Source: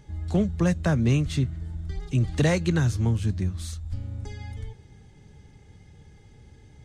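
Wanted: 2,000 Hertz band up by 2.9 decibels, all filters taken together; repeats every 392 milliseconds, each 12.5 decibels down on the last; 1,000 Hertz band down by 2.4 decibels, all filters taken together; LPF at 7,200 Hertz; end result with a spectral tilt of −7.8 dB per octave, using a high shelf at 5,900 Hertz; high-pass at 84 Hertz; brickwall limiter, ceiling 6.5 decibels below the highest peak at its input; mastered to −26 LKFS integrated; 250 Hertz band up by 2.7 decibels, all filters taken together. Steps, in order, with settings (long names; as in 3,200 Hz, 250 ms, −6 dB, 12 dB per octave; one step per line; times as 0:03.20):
high-pass filter 84 Hz
low-pass filter 7,200 Hz
parametric band 250 Hz +4.5 dB
parametric band 1,000 Hz −5 dB
parametric band 2,000 Hz +6 dB
high-shelf EQ 5,900 Hz −8.5 dB
brickwall limiter −16.5 dBFS
repeating echo 392 ms, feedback 24%, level −12.5 dB
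level +1.5 dB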